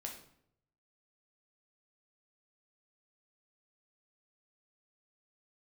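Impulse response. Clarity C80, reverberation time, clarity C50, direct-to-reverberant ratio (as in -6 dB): 10.5 dB, 0.70 s, 7.0 dB, 0.5 dB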